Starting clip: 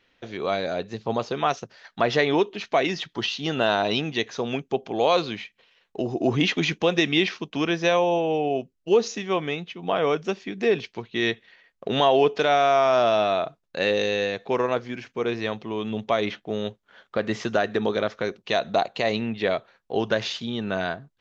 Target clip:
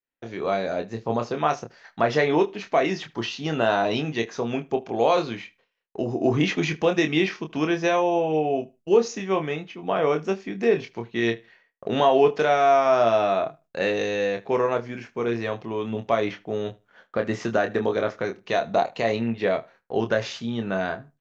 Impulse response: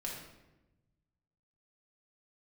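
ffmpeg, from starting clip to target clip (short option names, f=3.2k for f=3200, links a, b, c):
-filter_complex "[0:a]agate=range=-33dB:threshold=-49dB:ratio=3:detection=peak,equalizer=f=3.6k:t=o:w=0.89:g=-7.5,asplit=2[a][b];[b]adelay=26,volume=-6.5dB[c];[a][c]amix=inputs=2:normalize=0,asplit=2[d][e];[e]adelay=76,lowpass=f=4.8k:p=1,volume=-22.5dB,asplit=2[f][g];[g]adelay=76,lowpass=f=4.8k:p=1,volume=0.17[h];[d][f][h]amix=inputs=3:normalize=0"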